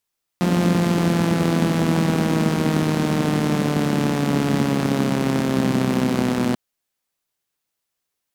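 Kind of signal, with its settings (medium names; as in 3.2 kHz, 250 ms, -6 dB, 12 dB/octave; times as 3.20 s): four-cylinder engine model, changing speed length 6.14 s, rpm 5300, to 3700, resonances 210 Hz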